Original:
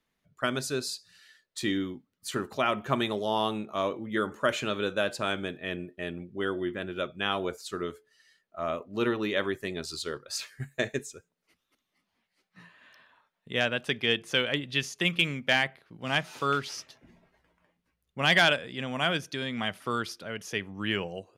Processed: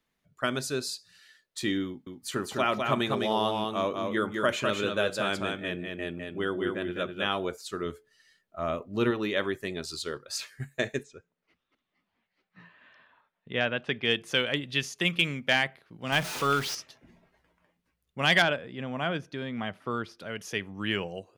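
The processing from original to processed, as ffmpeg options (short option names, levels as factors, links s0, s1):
-filter_complex "[0:a]asettb=1/sr,asplit=3[s0][s1][s2];[s0]atrim=end=1.864[s3];[s1]atrim=start=1.86:end=7.28,asetpts=PTS-STARTPTS,afade=t=in:d=0.004:c=qsin,afade=t=out:st=5.416:d=0.004:c=qsin,aecho=1:1:204:0.631,atrim=end_sample=239022[s4];[s2]atrim=start=7.276[s5];[s3][s4]acrossfade=d=0.004:c1=hsin:c2=qsin[s6];[s6][s5]acrossfade=d=0.004:c1=qsin:c2=hsin,asettb=1/sr,asplit=3[s7][s8][s9];[s7]atrim=end=7.864[s10];[s8]atrim=start=7.86:end=9.11,asetpts=PTS-STARTPTS,afade=t=in:d=0.004:c=qsin,afade=t=out:st=1.246:d=0.004:c=qsin,lowshelf=f=160:g=9[s11];[s9]atrim=start=9.106[s12];[s10][s11]acrossfade=d=0.004:c1=hsin:c2=qsin[s13];[s13][s12]acrossfade=d=0.004:c1=qsin:c2=hsin,asplit=3[s14][s15][s16];[s14]afade=t=out:st=11.02:d=0.02[s17];[s15]lowpass=3200,afade=t=in:st=11.02:d=0.02,afade=t=out:st=14.04:d=0.02[s18];[s16]afade=t=in:st=14.04:d=0.02[s19];[s17][s18][s19]amix=inputs=3:normalize=0,asettb=1/sr,asplit=3[s20][s21][s22];[s20]atrim=end=16.124[s23];[s21]atrim=start=16.12:end=16.75,asetpts=PTS-STARTPTS,afade=t=in:d=0.004:c=qsin,afade=t=out:st=0.626:d=0.004:c=qsin,aeval=exprs='val(0)+0.5*0.0251*sgn(val(0))':c=same[s24];[s22]atrim=start=16.746[s25];[s23][s24]acrossfade=d=0.004:c1=hsin:c2=qsin[s26];[s26][s25]acrossfade=d=0.004:c1=qsin:c2=hsin,asettb=1/sr,asplit=3[s27][s28][s29];[s27]atrim=end=18.424[s30];[s28]atrim=start=18.42:end=20.19,asetpts=PTS-STARTPTS,afade=t=in:d=0.004:c=qsin,afade=t=out:st=1.766:d=0.004:c=qsin,lowpass=f=1300:p=1[s31];[s29]atrim=start=20.186[s32];[s30][s31]acrossfade=d=0.004:c1=hsin:c2=qsin[s33];[s33][s32]acrossfade=d=0.004:c1=qsin:c2=hsin"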